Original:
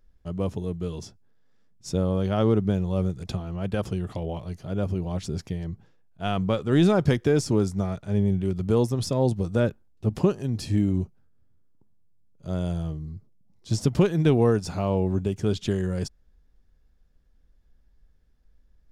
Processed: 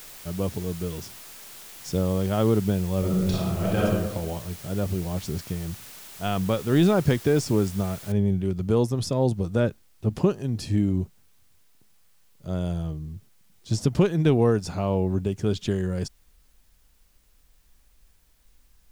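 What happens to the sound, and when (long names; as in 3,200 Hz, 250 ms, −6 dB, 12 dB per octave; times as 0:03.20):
0:02.99–0:03.85: thrown reverb, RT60 1.1 s, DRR −5.5 dB
0:08.12: noise floor change −44 dB −67 dB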